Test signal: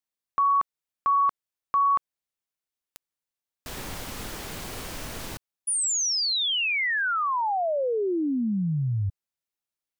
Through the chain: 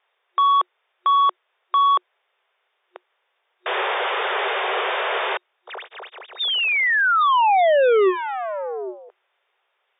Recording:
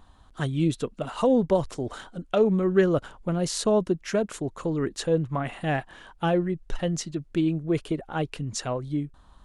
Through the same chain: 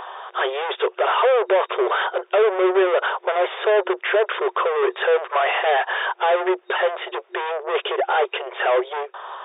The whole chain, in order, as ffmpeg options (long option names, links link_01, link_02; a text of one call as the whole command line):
ffmpeg -i in.wav -filter_complex "[0:a]asplit=2[link_01][link_02];[link_02]highpass=frequency=720:poles=1,volume=38dB,asoftclip=type=tanh:threshold=-9dB[link_03];[link_01][link_03]amix=inputs=2:normalize=0,lowpass=frequency=1500:poles=1,volume=-6dB,afftfilt=real='re*between(b*sr/4096,360,3700)':imag='im*between(b*sr/4096,360,3700)':win_size=4096:overlap=0.75" out.wav